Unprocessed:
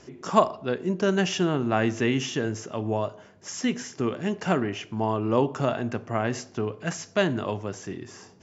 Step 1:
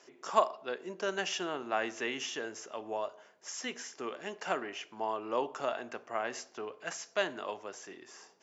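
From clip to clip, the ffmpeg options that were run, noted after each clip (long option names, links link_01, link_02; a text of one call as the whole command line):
ffmpeg -i in.wav -af "highpass=530,volume=-5.5dB" out.wav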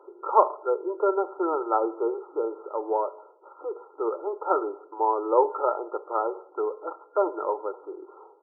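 ffmpeg -i in.wav -af "afftfilt=real='re*between(b*sr/4096,300,1400)':imag='im*between(b*sr/4096,300,1400)':win_size=4096:overlap=0.75,aecho=1:1:2.2:0.78,volume=9dB" out.wav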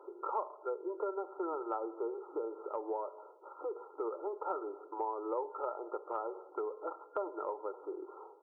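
ffmpeg -i in.wav -af "acompressor=threshold=-34dB:ratio=4,volume=-2dB" out.wav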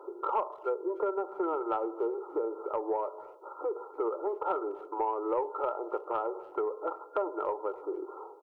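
ffmpeg -i in.wav -filter_complex "[0:a]asoftclip=type=tanh:threshold=-23.5dB,asplit=2[link_01][link_02];[link_02]adelay=290,highpass=300,lowpass=3400,asoftclip=type=hard:threshold=-35.5dB,volume=-26dB[link_03];[link_01][link_03]amix=inputs=2:normalize=0,volume=6.5dB" out.wav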